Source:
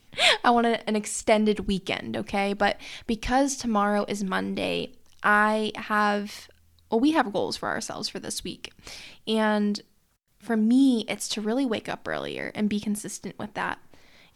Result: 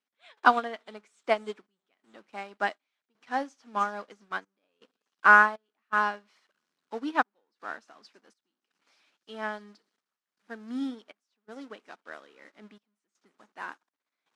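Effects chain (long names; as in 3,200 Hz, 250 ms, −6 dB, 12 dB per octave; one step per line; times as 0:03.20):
converter with a step at zero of −30 dBFS
high-pass filter 220 Hz 24 dB per octave
delay with a high-pass on its return 309 ms, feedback 80%, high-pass 4,700 Hz, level −13 dB
on a send at −23 dB: convolution reverb RT60 0.70 s, pre-delay 3 ms
on the sum: gate pattern "..xxxxxxx..xxxx" 81 BPM −12 dB
low-pass filter 6,300 Hz 12 dB per octave
parametric band 1,300 Hz +8.5 dB 1.1 octaves
expander for the loud parts 2.5 to 1, over −36 dBFS
level −2.5 dB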